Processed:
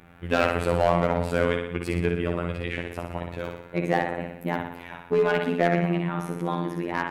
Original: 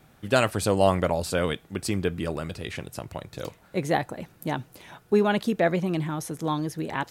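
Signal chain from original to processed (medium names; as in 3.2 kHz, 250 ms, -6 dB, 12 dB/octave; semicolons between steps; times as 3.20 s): resonant high shelf 3.5 kHz -12.5 dB, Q 1.5; in parallel at -1 dB: compression 10:1, threshold -34 dBFS, peak gain reduction 20 dB; on the sum: flutter echo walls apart 10.3 m, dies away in 0.75 s; overload inside the chain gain 13.5 dB; robot voice 86.3 Hz; on a send at -22.5 dB: reverberation RT60 0.70 s, pre-delay 84 ms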